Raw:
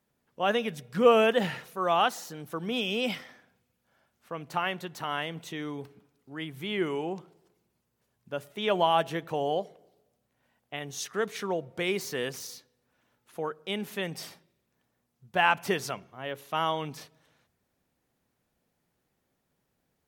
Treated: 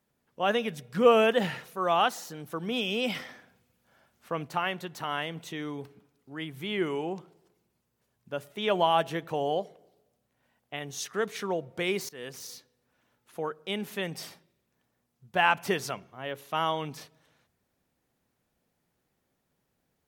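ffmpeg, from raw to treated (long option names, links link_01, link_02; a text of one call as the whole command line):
ffmpeg -i in.wav -filter_complex "[0:a]asplit=4[link_01][link_02][link_03][link_04];[link_01]atrim=end=3.152[link_05];[link_02]atrim=start=3.148:end=4.472,asetpts=PTS-STARTPTS,volume=5dB[link_06];[link_03]atrim=start=4.468:end=12.09,asetpts=PTS-STARTPTS,afade=type=out:start_time=7.618:duration=0.004:curve=hsin:silence=0.1[link_07];[link_04]atrim=start=12.09,asetpts=PTS-STARTPTS,afade=type=in:duration=0.45:silence=0.1[link_08];[link_05][link_06]acrossfade=duration=0.004:curve1=hsin:curve2=hsin[link_09];[link_07][link_08]concat=n=2:v=0:a=1[link_10];[link_09][link_10]acrossfade=duration=0.004:curve1=hsin:curve2=hsin" out.wav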